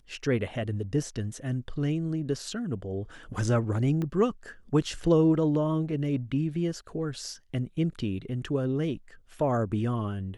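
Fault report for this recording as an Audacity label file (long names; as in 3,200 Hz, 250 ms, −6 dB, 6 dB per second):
4.020000	4.020000	click −21 dBFS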